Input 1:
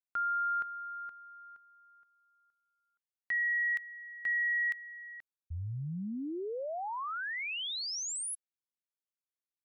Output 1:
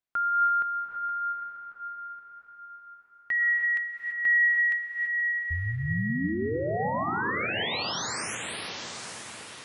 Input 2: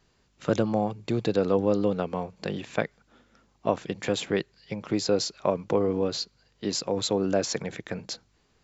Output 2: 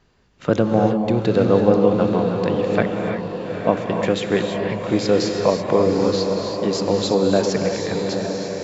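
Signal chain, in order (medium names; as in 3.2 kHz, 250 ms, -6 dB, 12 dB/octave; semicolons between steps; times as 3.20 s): low-pass 3.1 kHz 6 dB/octave; echo that smears into a reverb 901 ms, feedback 42%, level -6.5 dB; gated-style reverb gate 360 ms rising, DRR 3 dB; trim +6.5 dB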